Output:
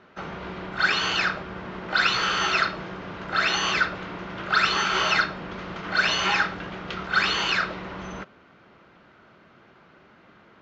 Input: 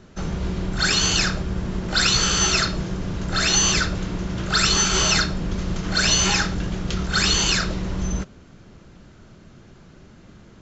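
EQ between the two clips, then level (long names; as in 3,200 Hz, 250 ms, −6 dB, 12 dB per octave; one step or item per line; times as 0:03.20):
resonant band-pass 1,500 Hz, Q 0.71
high-frequency loss of the air 180 metres
notch filter 1,700 Hz, Q 23
+4.5 dB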